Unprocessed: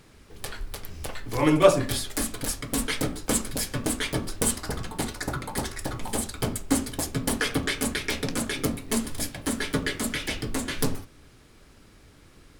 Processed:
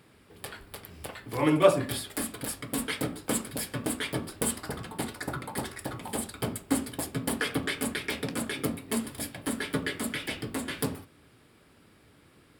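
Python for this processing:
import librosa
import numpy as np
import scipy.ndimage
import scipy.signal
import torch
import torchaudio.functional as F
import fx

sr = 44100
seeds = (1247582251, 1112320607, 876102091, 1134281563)

y = scipy.signal.sosfilt(scipy.signal.butter(2, 100.0, 'highpass', fs=sr, output='sos'), x)
y = fx.peak_eq(y, sr, hz=6200.0, db=-12.0, octaves=0.42)
y = fx.notch(y, sr, hz=4100.0, q=26.0)
y = y * librosa.db_to_amplitude(-3.0)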